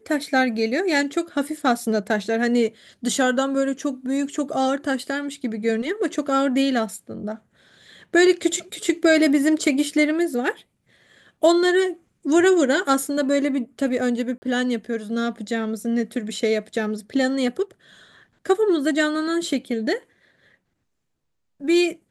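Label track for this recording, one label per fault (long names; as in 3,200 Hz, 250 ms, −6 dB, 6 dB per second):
14.380000	14.420000	drop-out 40 ms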